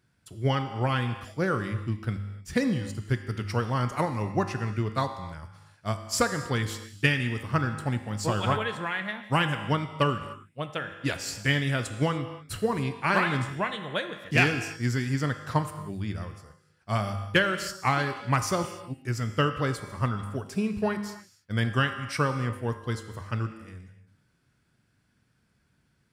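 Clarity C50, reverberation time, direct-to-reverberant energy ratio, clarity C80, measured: 9.0 dB, not exponential, 7.0 dB, 10.0 dB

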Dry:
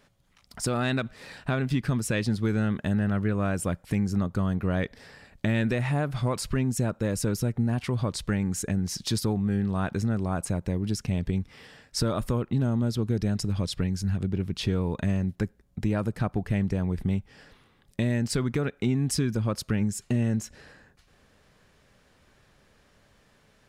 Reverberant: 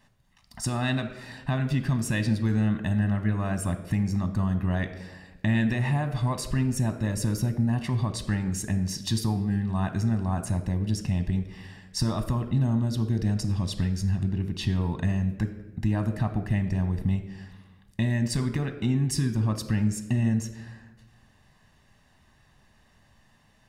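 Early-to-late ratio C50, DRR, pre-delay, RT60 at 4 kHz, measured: 11.0 dB, 9.0 dB, 9 ms, 0.80 s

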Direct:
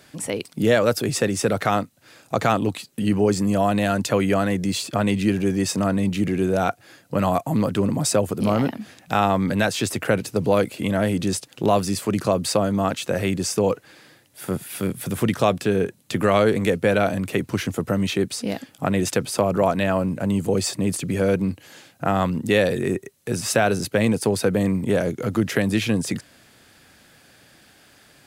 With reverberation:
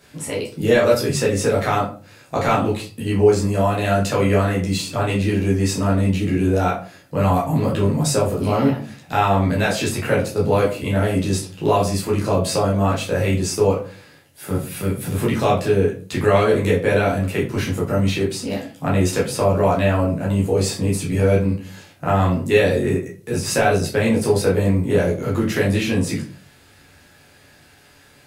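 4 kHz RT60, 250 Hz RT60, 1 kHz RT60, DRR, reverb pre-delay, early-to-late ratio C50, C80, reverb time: 0.25 s, 0.50 s, 0.40 s, -6.0 dB, 11 ms, 8.5 dB, 14.0 dB, 0.40 s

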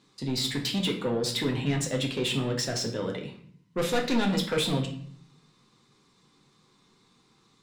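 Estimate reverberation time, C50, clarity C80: 0.55 s, 8.5 dB, 12.0 dB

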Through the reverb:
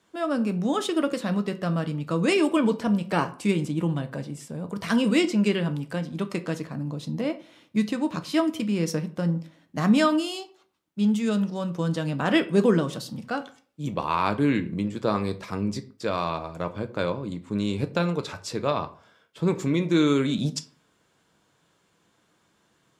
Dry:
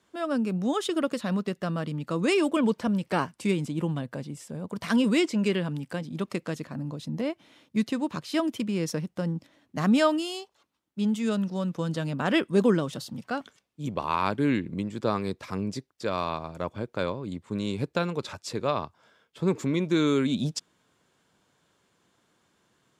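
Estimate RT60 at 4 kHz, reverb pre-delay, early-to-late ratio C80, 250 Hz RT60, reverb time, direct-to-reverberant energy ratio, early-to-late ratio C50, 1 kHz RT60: 0.30 s, 6 ms, 20.5 dB, 0.50 s, 0.45 s, 7.5 dB, 16.5 dB, 0.45 s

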